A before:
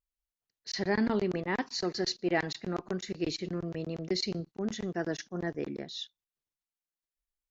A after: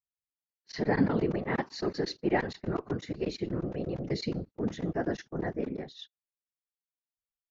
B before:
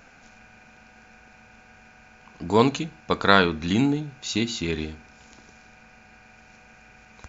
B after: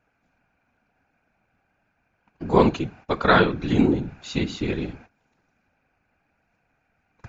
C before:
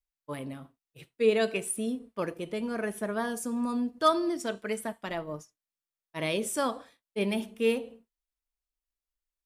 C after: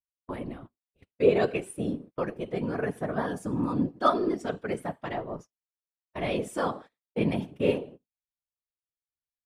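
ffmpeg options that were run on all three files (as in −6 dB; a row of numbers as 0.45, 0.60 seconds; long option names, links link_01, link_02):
-af "afftfilt=real='hypot(re,im)*cos(2*PI*random(0))':imag='hypot(re,im)*sin(2*PI*random(1))':win_size=512:overlap=0.75,lowpass=frequency=1800:poles=1,agate=range=-19dB:threshold=-53dB:ratio=16:detection=peak,volume=8dB"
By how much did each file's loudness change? +1.0, +1.0, +1.0 LU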